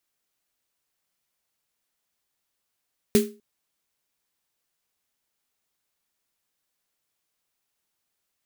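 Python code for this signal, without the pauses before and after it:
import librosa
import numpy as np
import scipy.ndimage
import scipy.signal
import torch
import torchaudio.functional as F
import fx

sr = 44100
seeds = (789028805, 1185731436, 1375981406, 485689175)

y = fx.drum_snare(sr, seeds[0], length_s=0.25, hz=220.0, second_hz=410.0, noise_db=-9.0, noise_from_hz=1400.0, decay_s=0.32, noise_decay_s=0.26)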